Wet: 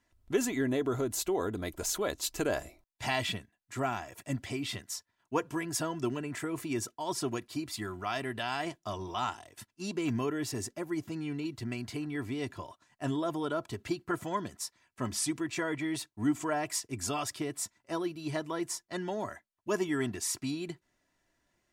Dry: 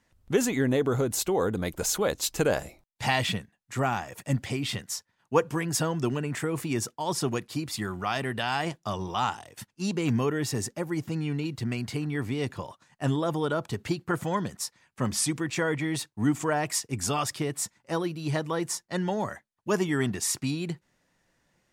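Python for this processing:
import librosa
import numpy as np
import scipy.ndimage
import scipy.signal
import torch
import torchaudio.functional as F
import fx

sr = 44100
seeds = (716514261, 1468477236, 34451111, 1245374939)

y = x + 0.49 * np.pad(x, (int(3.0 * sr / 1000.0), 0))[:len(x)]
y = y * 10.0 ** (-6.0 / 20.0)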